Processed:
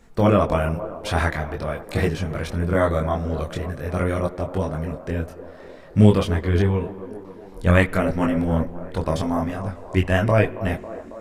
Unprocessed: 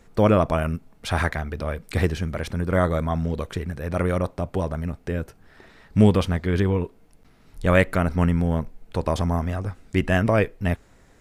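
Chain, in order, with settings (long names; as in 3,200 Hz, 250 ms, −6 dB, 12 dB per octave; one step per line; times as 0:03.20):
delay with a band-pass on its return 274 ms, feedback 71%, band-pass 570 Hz, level −12 dB
multi-voice chorus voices 4, 0.44 Hz, delay 23 ms, depth 4 ms
spring reverb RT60 1.8 s, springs 47/51 ms, chirp 75 ms, DRR 20 dB
level +4 dB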